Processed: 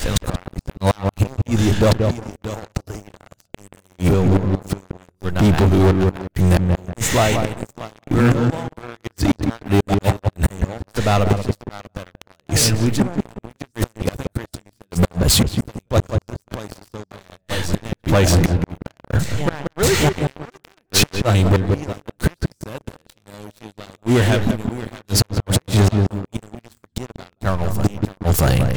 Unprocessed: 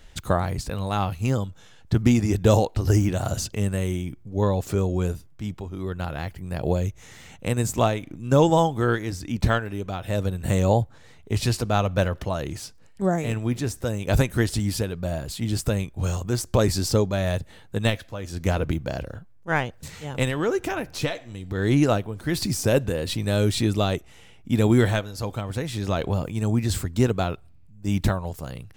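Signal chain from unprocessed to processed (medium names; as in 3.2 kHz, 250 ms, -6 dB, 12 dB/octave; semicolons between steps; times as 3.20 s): reverse echo 636 ms -16 dB; inverted gate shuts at -19 dBFS, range -34 dB; filtered feedback delay 181 ms, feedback 23%, low-pass 1.1 kHz, level -8.5 dB; waveshaping leveller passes 5; trim +6 dB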